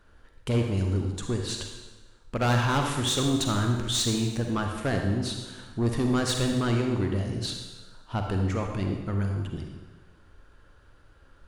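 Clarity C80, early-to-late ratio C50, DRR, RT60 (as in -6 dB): 5.5 dB, 3.5 dB, 2.5 dB, 1.2 s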